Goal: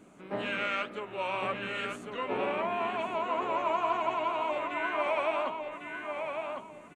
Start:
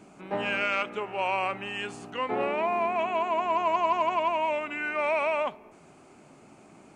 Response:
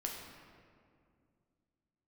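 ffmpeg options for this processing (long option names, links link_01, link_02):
-filter_complex "[0:a]equalizer=frequency=800:width_type=o:width=0.33:gain=-8,equalizer=frequency=2500:width_type=o:width=0.33:gain=-3,equalizer=frequency=5000:width_type=o:width=0.33:gain=-10,flanger=delay=3.4:depth=9.7:regen=53:speed=2:shape=sinusoidal,asplit=2[link_01][link_02];[link_02]asetrate=58866,aresample=44100,atempo=0.749154,volume=-13dB[link_03];[link_01][link_03]amix=inputs=2:normalize=0,asplit=2[link_04][link_05];[link_05]adelay=1102,lowpass=frequency=4100:poles=1,volume=-5dB,asplit=2[link_06][link_07];[link_07]adelay=1102,lowpass=frequency=4100:poles=1,volume=0.29,asplit=2[link_08][link_09];[link_09]adelay=1102,lowpass=frequency=4100:poles=1,volume=0.29,asplit=2[link_10][link_11];[link_11]adelay=1102,lowpass=frequency=4100:poles=1,volume=0.29[link_12];[link_04][link_06][link_08][link_10][link_12]amix=inputs=5:normalize=0,volume=1dB"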